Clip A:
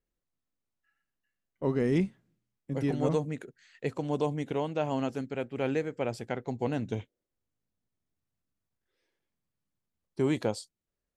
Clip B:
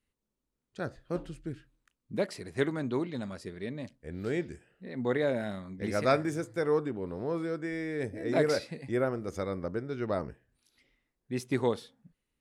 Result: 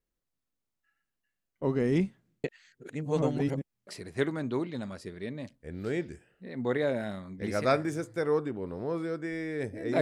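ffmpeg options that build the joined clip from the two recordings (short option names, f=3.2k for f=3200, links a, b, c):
-filter_complex "[0:a]apad=whole_dur=10.01,atrim=end=10.01,asplit=2[a][b];[a]atrim=end=2.442[c];[b]atrim=start=2.438:end=3.872,asetpts=PTS-STARTPTS,areverse[d];[1:a]atrim=start=2.268:end=8.41[e];[c][d]acrossfade=d=0.004:c1=hsin:c2=hsin[f];[f][e]acrossfade=d=0.004:c1=hsin:c2=hsin"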